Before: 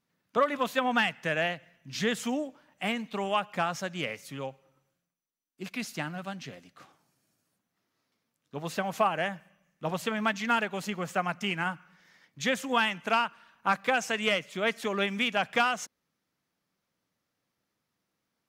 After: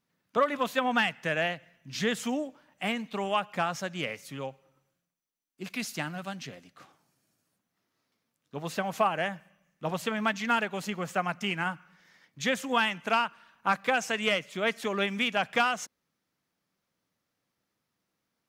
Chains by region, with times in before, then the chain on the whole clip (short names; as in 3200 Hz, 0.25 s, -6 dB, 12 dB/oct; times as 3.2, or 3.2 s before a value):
5.7–6.47 high shelf 3600 Hz +4.5 dB + upward compressor, threshold -55 dBFS
whole clip: dry